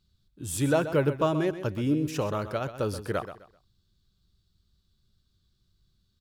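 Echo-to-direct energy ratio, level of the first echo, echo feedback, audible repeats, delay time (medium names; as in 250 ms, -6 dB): -11.5 dB, -12.0 dB, 27%, 3, 129 ms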